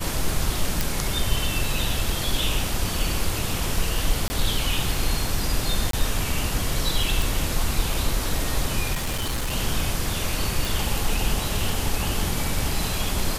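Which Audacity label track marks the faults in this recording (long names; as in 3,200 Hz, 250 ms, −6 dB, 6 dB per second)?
0.810000	0.810000	click
4.280000	4.300000	drop-out 20 ms
5.910000	5.930000	drop-out 23 ms
7.220000	7.220000	click
8.930000	9.530000	clipping −22 dBFS
10.650000	10.650000	click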